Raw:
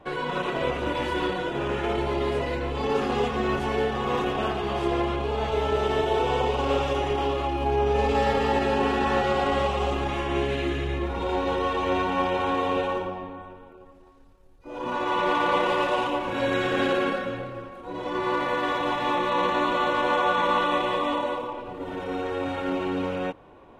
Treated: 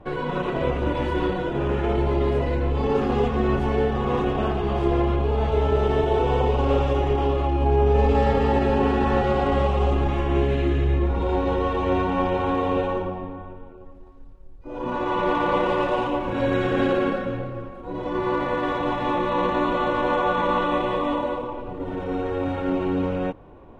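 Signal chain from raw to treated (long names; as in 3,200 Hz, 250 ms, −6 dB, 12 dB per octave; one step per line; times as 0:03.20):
spectral tilt −2.5 dB per octave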